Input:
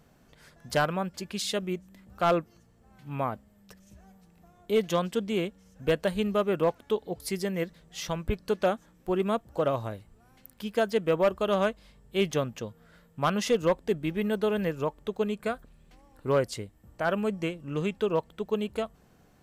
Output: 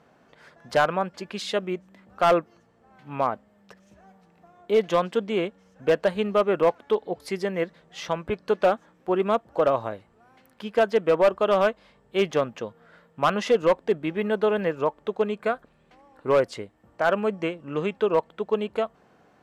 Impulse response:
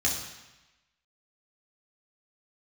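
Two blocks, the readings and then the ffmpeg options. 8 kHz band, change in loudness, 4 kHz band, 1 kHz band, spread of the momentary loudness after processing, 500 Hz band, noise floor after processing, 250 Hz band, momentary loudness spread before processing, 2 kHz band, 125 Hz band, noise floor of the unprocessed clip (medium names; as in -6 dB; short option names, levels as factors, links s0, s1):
no reading, +4.5 dB, +1.0 dB, +6.0 dB, 12 LU, +5.0 dB, -61 dBFS, +0.5 dB, 10 LU, +4.5 dB, -2.5 dB, -61 dBFS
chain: -af "bandpass=f=900:t=q:w=0.5:csg=0,asoftclip=type=hard:threshold=0.106,volume=2.24"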